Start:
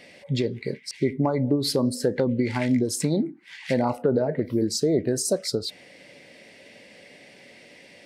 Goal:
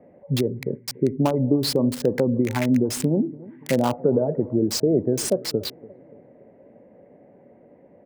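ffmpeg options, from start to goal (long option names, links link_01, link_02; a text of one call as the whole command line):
ffmpeg -i in.wav -filter_complex "[0:a]aecho=1:1:288|576|864|1152:0.1|0.048|0.023|0.0111,acrossover=split=130|1000[link_01][link_02][link_03];[link_03]acrusher=bits=4:mix=0:aa=0.000001[link_04];[link_01][link_02][link_04]amix=inputs=3:normalize=0,adynamicequalizer=threshold=0.00562:dfrequency=4600:dqfactor=0.7:tfrequency=4600:tqfactor=0.7:attack=5:release=100:ratio=0.375:range=3:mode=cutabove:tftype=highshelf,volume=2.5dB" out.wav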